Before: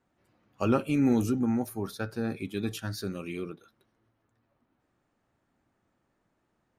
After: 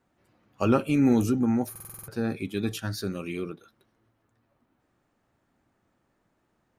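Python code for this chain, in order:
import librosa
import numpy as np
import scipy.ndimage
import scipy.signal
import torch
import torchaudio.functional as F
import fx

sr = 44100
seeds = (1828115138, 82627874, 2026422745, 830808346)

y = fx.buffer_glitch(x, sr, at_s=(1.71,), block=2048, repeats=7)
y = y * librosa.db_to_amplitude(3.0)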